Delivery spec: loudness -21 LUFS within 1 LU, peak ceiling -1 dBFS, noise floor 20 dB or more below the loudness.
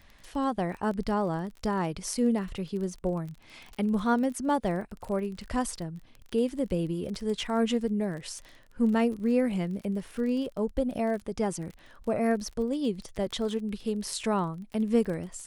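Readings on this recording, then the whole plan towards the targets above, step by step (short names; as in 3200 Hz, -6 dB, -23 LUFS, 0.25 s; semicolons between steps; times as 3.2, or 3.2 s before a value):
ticks 28/s; loudness -30.0 LUFS; peak -13.0 dBFS; loudness target -21.0 LUFS
-> de-click; gain +9 dB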